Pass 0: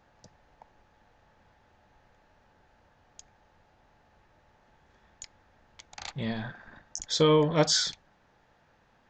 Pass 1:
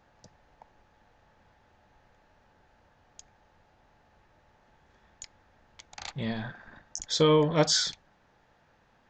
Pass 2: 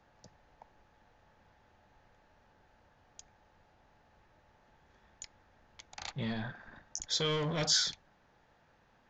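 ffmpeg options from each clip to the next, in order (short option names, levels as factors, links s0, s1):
-af anull
-filter_complex "[0:a]acrossover=split=130|1800[s0][s1][s2];[s1]volume=35.5,asoftclip=hard,volume=0.0282[s3];[s0][s3][s2]amix=inputs=3:normalize=0,aresample=16000,aresample=44100,volume=0.75"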